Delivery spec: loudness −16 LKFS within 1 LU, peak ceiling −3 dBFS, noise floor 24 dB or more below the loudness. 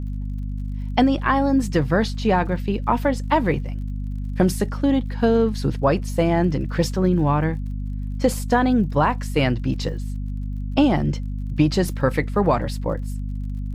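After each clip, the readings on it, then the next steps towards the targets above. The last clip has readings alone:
crackle rate 44 per second; mains hum 50 Hz; hum harmonics up to 250 Hz; level of the hum −25 dBFS; integrated loudness −22.0 LKFS; sample peak −6.5 dBFS; target loudness −16.0 LKFS
→ click removal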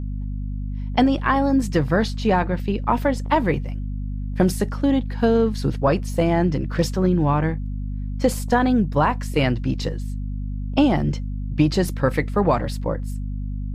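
crackle rate 0.073 per second; mains hum 50 Hz; hum harmonics up to 250 Hz; level of the hum −25 dBFS
→ hum removal 50 Hz, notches 5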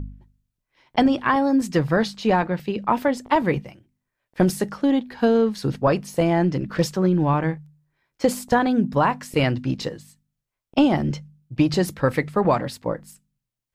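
mains hum none found; integrated loudness −22.0 LKFS; sample peak −7.0 dBFS; target loudness −16.0 LKFS
→ level +6 dB
brickwall limiter −3 dBFS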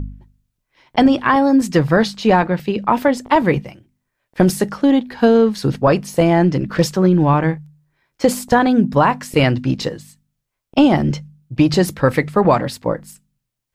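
integrated loudness −16.5 LKFS; sample peak −3.0 dBFS; background noise floor −77 dBFS

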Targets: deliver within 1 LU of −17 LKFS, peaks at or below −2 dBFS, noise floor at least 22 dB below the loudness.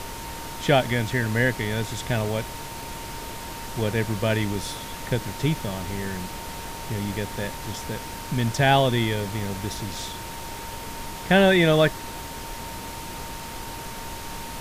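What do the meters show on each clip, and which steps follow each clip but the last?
interfering tone 920 Hz; level of the tone −39 dBFS; background noise floor −36 dBFS; target noise floor −48 dBFS; integrated loudness −26.0 LKFS; sample peak −6.5 dBFS; target loudness −17.0 LKFS
→ notch filter 920 Hz, Q 30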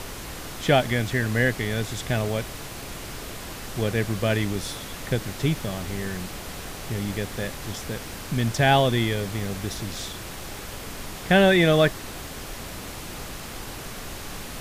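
interfering tone none found; background noise floor −37 dBFS; target noise floor −48 dBFS
→ noise reduction from a noise print 11 dB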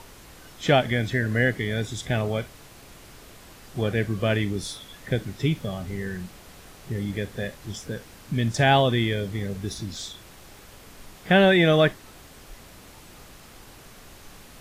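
background noise floor −48 dBFS; integrated loudness −24.5 LKFS; sample peak −7.0 dBFS; target loudness −17.0 LKFS
→ level +7.5 dB
brickwall limiter −2 dBFS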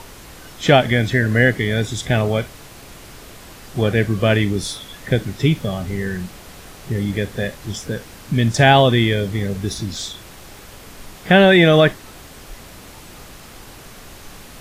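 integrated loudness −17.5 LKFS; sample peak −2.0 dBFS; background noise floor −41 dBFS

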